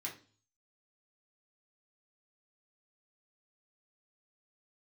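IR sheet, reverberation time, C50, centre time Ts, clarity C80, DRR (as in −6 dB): 0.40 s, 10.5 dB, 20 ms, 16.0 dB, −3.5 dB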